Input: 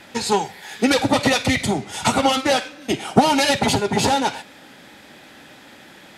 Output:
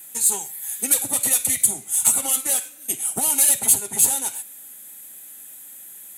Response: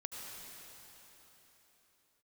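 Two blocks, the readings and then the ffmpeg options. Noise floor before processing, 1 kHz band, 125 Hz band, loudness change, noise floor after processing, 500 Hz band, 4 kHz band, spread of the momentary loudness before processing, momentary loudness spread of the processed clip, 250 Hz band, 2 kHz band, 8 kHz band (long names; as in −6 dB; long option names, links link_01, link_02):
−45 dBFS, −16.0 dB, −17.5 dB, +1.0 dB, −42 dBFS, −17.0 dB, −10.5 dB, 8 LU, 23 LU, −17.5 dB, −13.0 dB, +12.5 dB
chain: -af "aexciter=amount=12.7:drive=9.2:freq=7700,highshelf=frequency=2500:gain=11.5,volume=-17.5dB"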